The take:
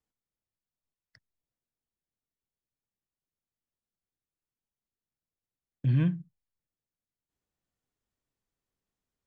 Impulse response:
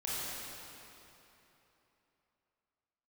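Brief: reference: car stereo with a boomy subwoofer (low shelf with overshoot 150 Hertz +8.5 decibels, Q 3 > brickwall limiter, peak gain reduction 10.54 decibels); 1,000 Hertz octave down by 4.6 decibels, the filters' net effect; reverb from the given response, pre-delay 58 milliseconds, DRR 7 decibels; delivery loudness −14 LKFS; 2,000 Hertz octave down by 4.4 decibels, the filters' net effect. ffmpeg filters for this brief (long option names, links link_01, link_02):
-filter_complex "[0:a]equalizer=frequency=1000:width_type=o:gain=-4,equalizer=frequency=2000:width_type=o:gain=-4.5,asplit=2[link_01][link_02];[1:a]atrim=start_sample=2205,adelay=58[link_03];[link_02][link_03]afir=irnorm=-1:irlink=0,volume=-12dB[link_04];[link_01][link_04]amix=inputs=2:normalize=0,lowshelf=frequency=150:width_type=q:width=3:gain=8.5,volume=14.5dB,alimiter=limit=-2.5dB:level=0:latency=1"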